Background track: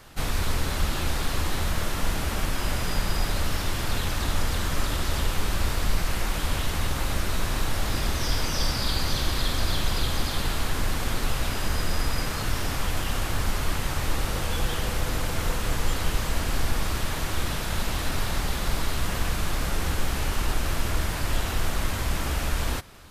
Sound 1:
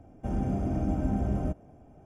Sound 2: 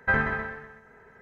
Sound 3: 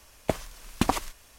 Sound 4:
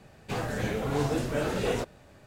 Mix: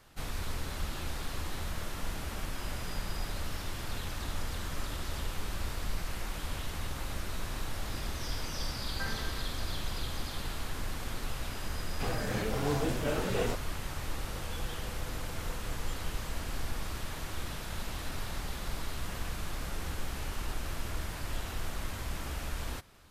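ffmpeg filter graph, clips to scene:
-filter_complex "[0:a]volume=0.299[s0];[4:a]dynaudnorm=f=170:g=3:m=1.88[s1];[2:a]atrim=end=1.21,asetpts=PTS-STARTPTS,volume=0.158,afade=t=in:d=0.004:c=hsin,afade=t=out:st=1.206:d=0.004:c=hsin,adelay=8920[s2];[s1]atrim=end=2.26,asetpts=PTS-STARTPTS,volume=0.355,afade=t=in:d=0.004:c=hsin,afade=t=out:st=2.256:d=0.004:c=hsin,adelay=11710[s3];[s0][s2][s3]amix=inputs=3:normalize=0"

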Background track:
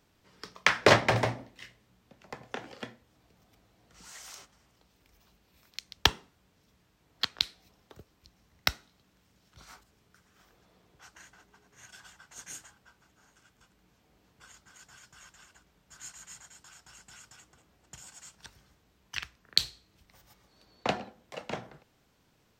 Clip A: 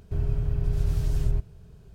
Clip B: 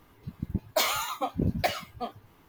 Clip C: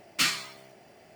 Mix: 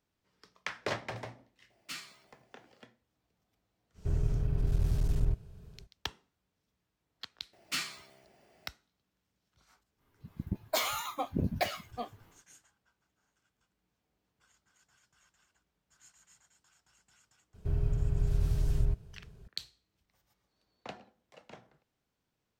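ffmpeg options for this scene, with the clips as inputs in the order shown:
-filter_complex "[3:a]asplit=2[s0][s1];[1:a]asplit=2[s2][s3];[0:a]volume=0.178[s4];[s2]aeval=exprs='clip(val(0),-1,0.0668)':c=same[s5];[2:a]dynaudnorm=f=230:g=3:m=5.01[s6];[s0]atrim=end=1.15,asetpts=PTS-STARTPTS,volume=0.133,afade=t=in:d=0.004:c=hsin,afade=t=out:st=1.146:d=0.004:c=hsin,adelay=1700[s7];[s5]atrim=end=1.94,asetpts=PTS-STARTPTS,volume=0.708,afade=t=in:d=0.05,afade=t=out:st=1.89:d=0.05,adelay=3940[s8];[s1]atrim=end=1.15,asetpts=PTS-STARTPTS,volume=0.335,afade=t=in:d=0.004:c=hsin,afade=t=out:st=1.146:d=0.004:c=hsin,adelay=7530[s9];[s6]atrim=end=2.48,asetpts=PTS-STARTPTS,volume=0.158,afade=t=in:d=0.05,afade=t=out:st=2.43:d=0.05,adelay=9970[s10];[s3]atrim=end=1.94,asetpts=PTS-STARTPTS,volume=0.631,afade=t=in:d=0.004:c=hsin,afade=t=out:st=1.936:d=0.004:c=hsin,adelay=17540[s11];[s4][s7][s8][s9][s10][s11]amix=inputs=6:normalize=0"

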